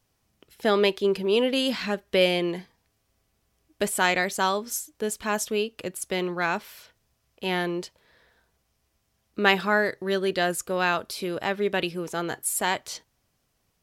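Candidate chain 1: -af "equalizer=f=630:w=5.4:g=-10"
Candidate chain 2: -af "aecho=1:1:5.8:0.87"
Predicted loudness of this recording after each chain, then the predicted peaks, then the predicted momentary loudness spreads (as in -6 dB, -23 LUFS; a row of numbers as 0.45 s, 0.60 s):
-26.5 LUFS, -23.5 LUFS; -4.5 dBFS, -4.0 dBFS; 9 LU, 10 LU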